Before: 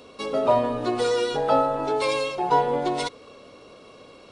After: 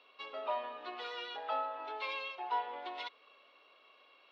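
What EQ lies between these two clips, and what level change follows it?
air absorption 80 m; speaker cabinet 380–2900 Hz, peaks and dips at 490 Hz -6 dB, 1500 Hz -3 dB, 2200 Hz -3 dB; differentiator; +5.0 dB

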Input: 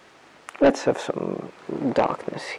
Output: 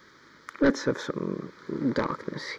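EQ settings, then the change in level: fixed phaser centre 2700 Hz, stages 6; 0.0 dB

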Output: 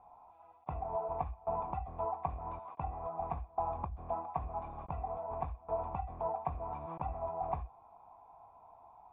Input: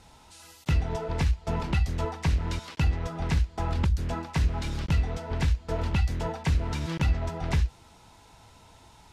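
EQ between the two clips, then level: vocal tract filter a; +9.5 dB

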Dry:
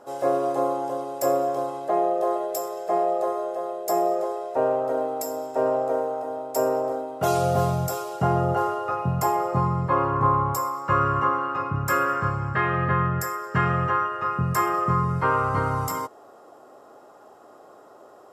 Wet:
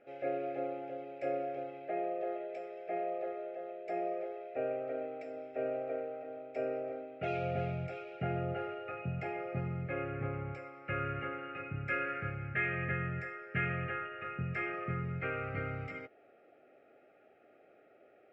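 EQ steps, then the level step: Butterworth band-stop 1000 Hz, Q 1.5; ladder low-pass 2500 Hz, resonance 80%; notch 1500 Hz, Q 15; 0.0 dB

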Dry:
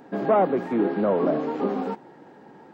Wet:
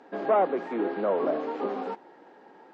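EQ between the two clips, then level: HPF 360 Hz 12 dB/oct; air absorption 110 m; high shelf 3800 Hz +5.5 dB; -2.0 dB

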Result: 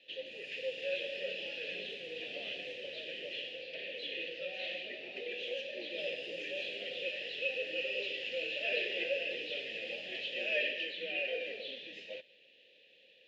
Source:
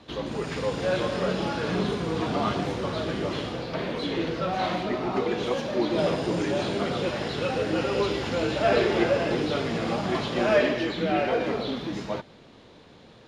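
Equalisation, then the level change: vowel filter e; resonant high shelf 1900 Hz +13.5 dB, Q 3; -7.5 dB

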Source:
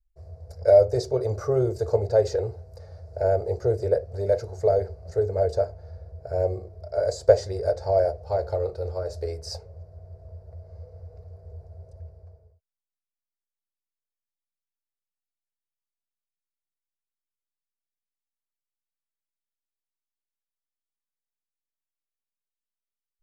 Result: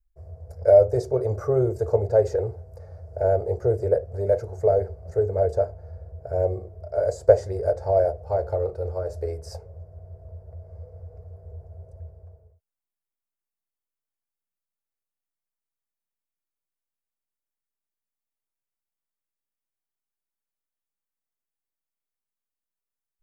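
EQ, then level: bell 4200 Hz -13.5 dB 1.3 oct; +1.5 dB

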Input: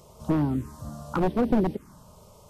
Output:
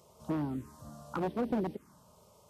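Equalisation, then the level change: HPF 42 Hz; low shelf 130 Hz -8.5 dB; -7.5 dB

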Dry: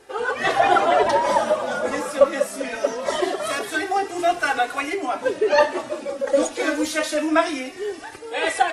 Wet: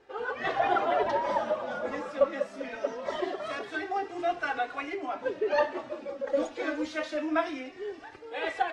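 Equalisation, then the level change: air absorption 160 m; -8.5 dB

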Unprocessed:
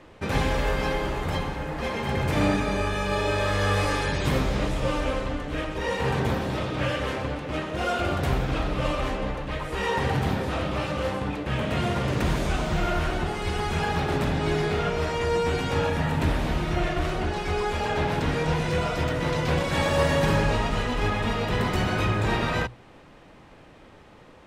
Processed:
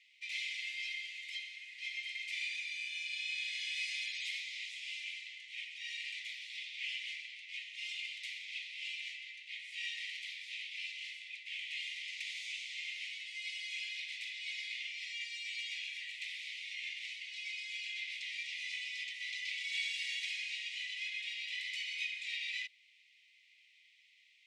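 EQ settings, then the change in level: Chebyshev high-pass 2000 Hz, order 8; air absorption 95 m; -2.0 dB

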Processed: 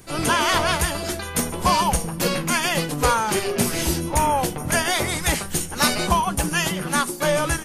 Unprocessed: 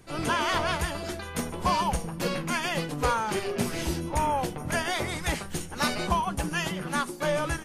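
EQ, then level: high shelf 6500 Hz +10.5 dB; +6.0 dB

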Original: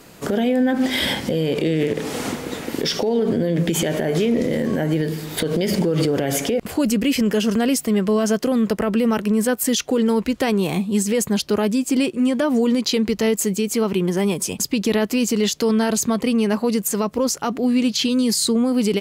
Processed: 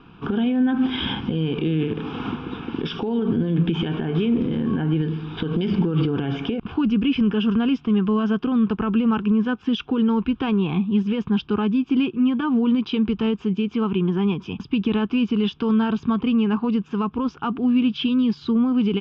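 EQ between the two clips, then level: steep low-pass 4300 Hz 48 dB/oct; high shelf 3100 Hz -9.5 dB; fixed phaser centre 2900 Hz, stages 8; +2.0 dB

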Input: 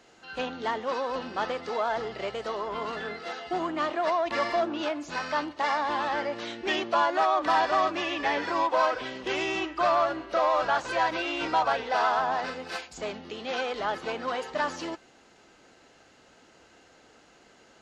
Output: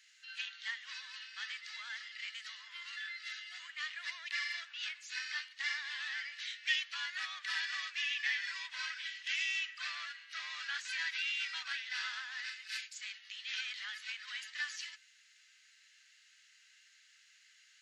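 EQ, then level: Chebyshev high-pass 1800 Hz, order 4; -1.5 dB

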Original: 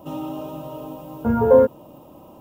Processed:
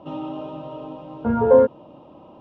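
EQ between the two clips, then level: LPF 3900 Hz 24 dB/oct; low shelf 110 Hz -6.5 dB; 0.0 dB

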